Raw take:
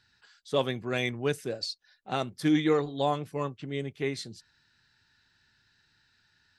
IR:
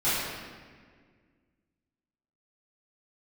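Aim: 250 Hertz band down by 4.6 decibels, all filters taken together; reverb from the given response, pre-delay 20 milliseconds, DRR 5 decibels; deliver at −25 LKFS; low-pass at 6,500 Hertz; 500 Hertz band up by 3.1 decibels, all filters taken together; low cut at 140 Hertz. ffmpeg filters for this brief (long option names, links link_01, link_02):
-filter_complex "[0:a]highpass=140,lowpass=6500,equalizer=frequency=250:width_type=o:gain=-8.5,equalizer=frequency=500:width_type=o:gain=6,asplit=2[link_01][link_02];[1:a]atrim=start_sample=2205,adelay=20[link_03];[link_02][link_03]afir=irnorm=-1:irlink=0,volume=-18.5dB[link_04];[link_01][link_04]amix=inputs=2:normalize=0,volume=3.5dB"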